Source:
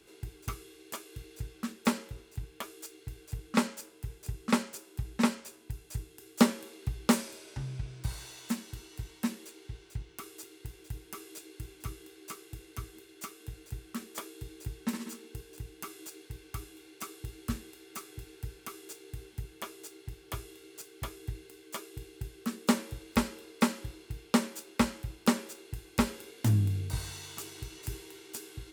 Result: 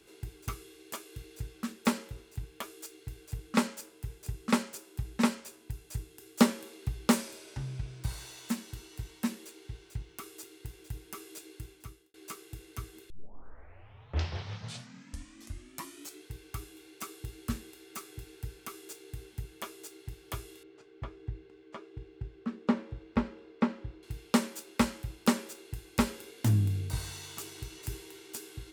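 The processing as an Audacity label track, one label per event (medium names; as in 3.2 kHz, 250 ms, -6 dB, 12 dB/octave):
11.520000	12.140000	fade out
13.100000	13.100000	tape start 3.20 s
20.630000	24.030000	tape spacing loss at 10 kHz 34 dB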